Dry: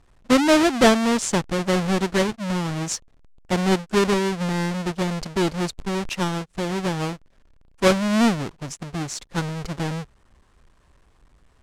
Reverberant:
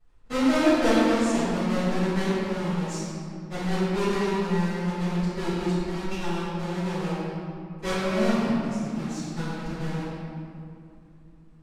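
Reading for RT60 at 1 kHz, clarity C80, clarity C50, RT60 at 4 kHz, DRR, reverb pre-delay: 2.2 s, -2.5 dB, -4.5 dB, 1.4 s, -17.5 dB, 3 ms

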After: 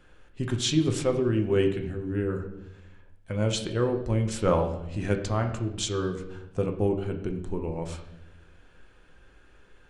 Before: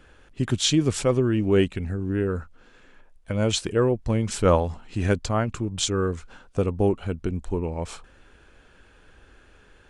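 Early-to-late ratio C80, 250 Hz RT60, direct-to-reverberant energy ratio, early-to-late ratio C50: 11.5 dB, 1.2 s, 3.5 dB, 9.0 dB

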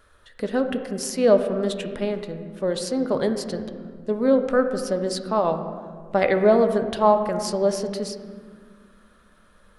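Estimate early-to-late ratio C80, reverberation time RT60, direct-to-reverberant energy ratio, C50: 10.0 dB, 1.8 s, 6.5 dB, 8.5 dB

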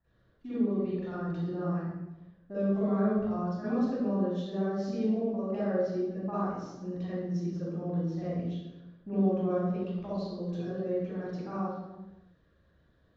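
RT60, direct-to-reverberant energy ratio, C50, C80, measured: 1.0 s, -13.0 dB, -7.5 dB, -1.5 dB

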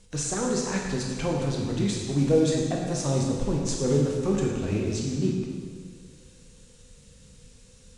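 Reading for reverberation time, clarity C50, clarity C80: 1.7 s, 1.0 dB, 3.0 dB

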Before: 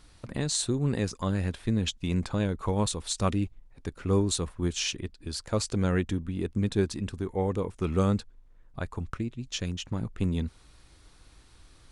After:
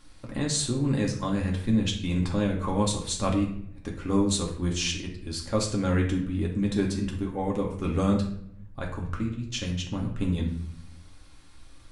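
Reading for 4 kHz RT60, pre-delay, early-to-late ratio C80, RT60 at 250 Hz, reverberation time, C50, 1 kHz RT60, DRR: 0.50 s, 4 ms, 10.5 dB, 1.0 s, 0.70 s, 6.5 dB, 0.60 s, -1.5 dB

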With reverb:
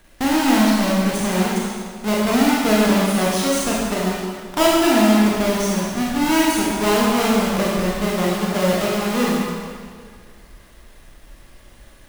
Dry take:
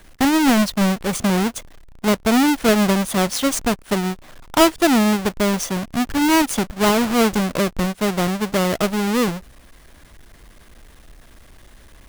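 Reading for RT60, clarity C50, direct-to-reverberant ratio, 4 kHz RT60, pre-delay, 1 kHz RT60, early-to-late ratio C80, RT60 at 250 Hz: 1.9 s, -2.0 dB, -5.5 dB, 1.7 s, 24 ms, 1.9 s, 0.5 dB, 1.9 s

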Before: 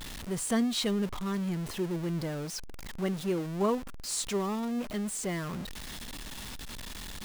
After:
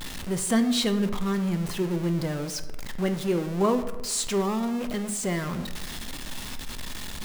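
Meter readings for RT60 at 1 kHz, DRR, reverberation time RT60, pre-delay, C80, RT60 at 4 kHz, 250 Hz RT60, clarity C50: 1.0 s, 8.0 dB, 1.1 s, 4 ms, 13.0 dB, 0.60 s, 1.1 s, 11.5 dB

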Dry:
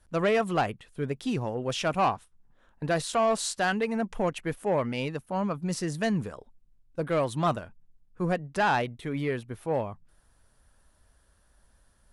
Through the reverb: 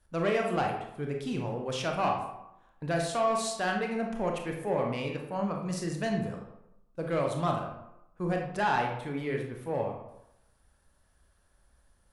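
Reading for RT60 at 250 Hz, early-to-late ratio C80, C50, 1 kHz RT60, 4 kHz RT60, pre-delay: 0.80 s, 7.5 dB, 4.5 dB, 0.90 s, 0.50 s, 25 ms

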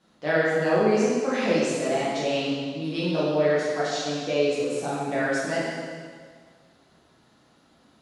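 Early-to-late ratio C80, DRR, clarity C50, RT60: 0.0 dB, -9.5 dB, -2.5 dB, 1.8 s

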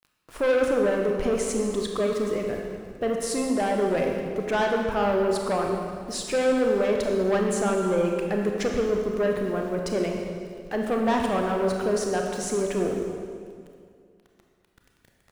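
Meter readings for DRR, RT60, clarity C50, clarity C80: 1.0 dB, 2.2 s, 2.5 dB, 3.5 dB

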